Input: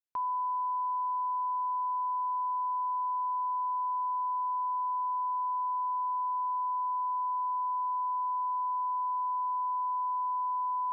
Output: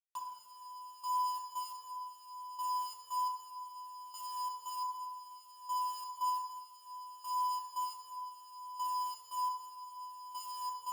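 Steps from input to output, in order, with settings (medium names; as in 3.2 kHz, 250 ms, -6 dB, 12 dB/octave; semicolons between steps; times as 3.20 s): high-pass 1 kHz 24 dB/octave; peak limiter -38 dBFS, peak gain reduction 6.5 dB; loudest bins only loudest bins 16; bit crusher 8-bit; trance gate "x.....xx." 87 bpm -12 dB; FDN reverb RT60 1.5 s, low-frequency decay 1×, high-frequency decay 0.65×, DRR -0.5 dB; Shepard-style flanger falling 0.8 Hz; trim +5 dB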